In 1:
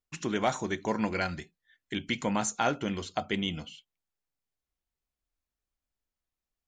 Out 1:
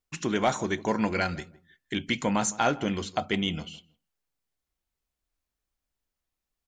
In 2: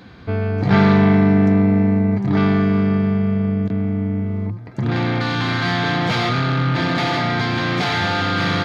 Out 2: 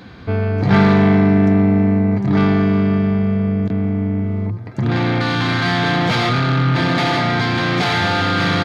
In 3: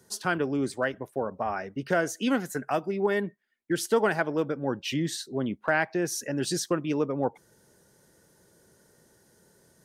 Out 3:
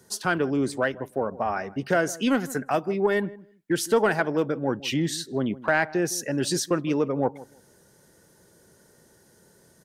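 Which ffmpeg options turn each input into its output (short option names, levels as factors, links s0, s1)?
-filter_complex "[0:a]asplit=2[s0][s1];[s1]asoftclip=type=tanh:threshold=0.106,volume=0.501[s2];[s0][s2]amix=inputs=2:normalize=0,asplit=2[s3][s4];[s4]adelay=160,lowpass=f=930:p=1,volume=0.133,asplit=2[s5][s6];[s6]adelay=160,lowpass=f=930:p=1,volume=0.2[s7];[s3][s5][s7]amix=inputs=3:normalize=0"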